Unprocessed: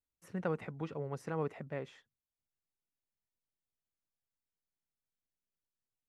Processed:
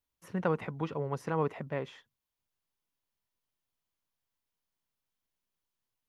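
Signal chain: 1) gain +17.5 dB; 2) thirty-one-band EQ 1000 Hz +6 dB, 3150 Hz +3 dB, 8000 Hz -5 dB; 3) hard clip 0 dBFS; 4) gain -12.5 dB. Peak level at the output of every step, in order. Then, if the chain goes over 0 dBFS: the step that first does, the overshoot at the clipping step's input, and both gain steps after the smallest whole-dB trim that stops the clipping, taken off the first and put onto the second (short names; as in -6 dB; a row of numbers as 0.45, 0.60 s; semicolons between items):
-4.0, -3.0, -3.0, -15.5 dBFS; no overload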